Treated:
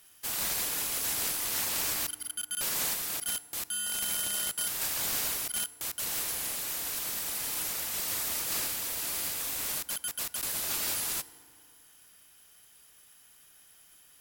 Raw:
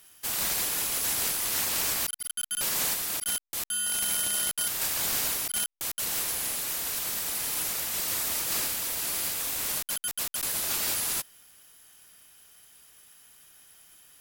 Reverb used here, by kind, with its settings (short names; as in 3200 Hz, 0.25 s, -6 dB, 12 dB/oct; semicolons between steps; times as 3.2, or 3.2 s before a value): FDN reverb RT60 2.3 s, low-frequency decay 1.2×, high-frequency decay 0.45×, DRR 16 dB; gain -3 dB